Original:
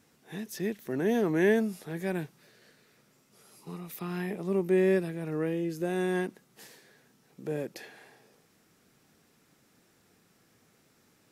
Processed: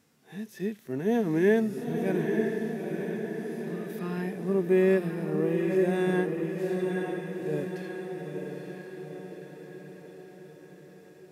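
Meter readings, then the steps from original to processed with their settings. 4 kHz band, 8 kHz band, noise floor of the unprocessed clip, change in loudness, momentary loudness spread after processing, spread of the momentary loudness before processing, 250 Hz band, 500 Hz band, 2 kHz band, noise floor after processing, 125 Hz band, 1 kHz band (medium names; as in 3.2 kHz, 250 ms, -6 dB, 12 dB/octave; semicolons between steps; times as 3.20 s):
-0.5 dB, no reading, -66 dBFS, +1.5 dB, 20 LU, 18 LU, +3.5 dB, +3.5 dB, +1.5 dB, -53 dBFS, +3.5 dB, +2.5 dB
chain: harmonic-percussive split percussive -15 dB; echo that smears into a reverb 904 ms, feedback 57%, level -4 dB; trim +2 dB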